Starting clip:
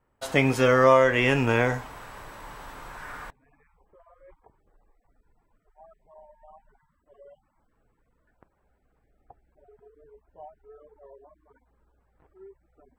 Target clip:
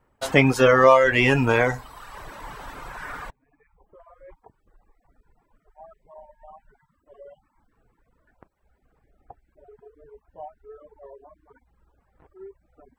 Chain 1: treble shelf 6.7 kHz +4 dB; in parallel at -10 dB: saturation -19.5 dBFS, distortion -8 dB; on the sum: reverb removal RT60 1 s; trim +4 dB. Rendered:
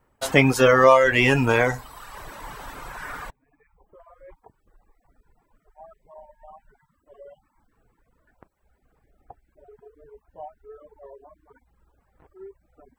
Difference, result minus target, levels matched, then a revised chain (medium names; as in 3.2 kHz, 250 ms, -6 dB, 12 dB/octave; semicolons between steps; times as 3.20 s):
8 kHz band +3.5 dB
treble shelf 6.7 kHz -3 dB; in parallel at -10 dB: saturation -19.5 dBFS, distortion -8 dB; on the sum: reverb removal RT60 1 s; trim +4 dB